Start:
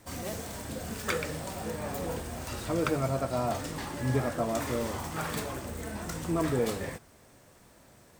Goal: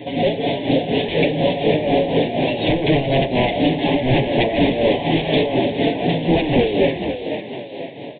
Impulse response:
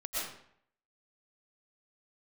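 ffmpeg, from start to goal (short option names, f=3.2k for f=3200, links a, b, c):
-filter_complex "[0:a]highpass=200,aecho=1:1:7.1:0.86,asplit=2[a][b];[b]acompressor=threshold=-36dB:ratio=6,volume=-2dB[c];[a][c]amix=inputs=2:normalize=0,aeval=exprs='0.178*sin(PI/2*3.55*val(0)/0.178)':c=same,aresample=8000,aresample=44100,asplit=2[d][e];[e]asplit=5[f][g][h][i][j];[f]adelay=499,afreqshift=55,volume=-8dB[k];[g]adelay=998,afreqshift=110,volume=-14.9dB[l];[h]adelay=1497,afreqshift=165,volume=-21.9dB[m];[i]adelay=1996,afreqshift=220,volume=-28.8dB[n];[j]adelay=2495,afreqshift=275,volume=-35.7dB[o];[k][l][m][n][o]amix=inputs=5:normalize=0[p];[d][p]amix=inputs=2:normalize=0,tremolo=f=4.1:d=0.64,asuperstop=centerf=1300:order=4:qfactor=0.79,volume=6dB"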